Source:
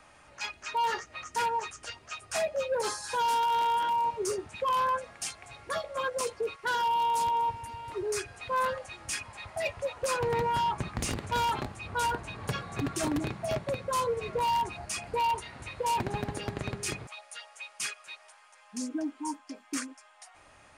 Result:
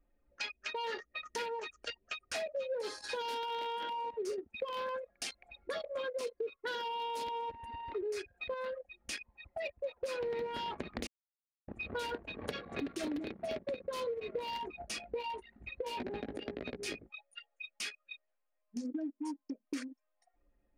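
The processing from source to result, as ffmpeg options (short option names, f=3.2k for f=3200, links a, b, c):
-filter_complex "[0:a]asplit=3[a][b][c];[a]afade=t=out:st=14.57:d=0.02[d];[b]flanger=delay=16:depth=2.7:speed=1.5,afade=t=in:st=14.57:d=0.02,afade=t=out:st=18.84:d=0.02[e];[c]afade=t=in:st=18.84:d=0.02[f];[d][e][f]amix=inputs=3:normalize=0,asplit=5[g][h][i][j][k];[g]atrim=end=8.542[l];[h]atrim=start=8.538:end=9.842,asetpts=PTS-STARTPTS,volume=-5dB[m];[i]atrim=start=9.838:end=11.07,asetpts=PTS-STARTPTS,afade=t=out:st=1.228:d=0.004:c=hsin[n];[j]atrim=start=11.07:end=11.68,asetpts=PTS-STARTPTS,volume=0[o];[k]atrim=start=11.68,asetpts=PTS-STARTPTS,afade=t=in:d=0.004:c=hsin[p];[l][m]acrossfade=d=0.004:c1=hsin:c2=hsin[q];[n][o][p]concat=n=3:v=0:a=1[r];[q][r]acrossfade=d=0.004:c1=hsin:c2=hsin,anlmdn=0.631,equalizer=f=125:t=o:w=1:g=-12,equalizer=f=250:t=o:w=1:g=9,equalizer=f=500:t=o:w=1:g=9,equalizer=f=1k:t=o:w=1:g=-6,equalizer=f=2k:t=o:w=1:g=5,equalizer=f=4k:t=o:w=1:g=8,equalizer=f=8k:t=o:w=1:g=-7,acompressor=threshold=-40dB:ratio=4,volume=1.5dB"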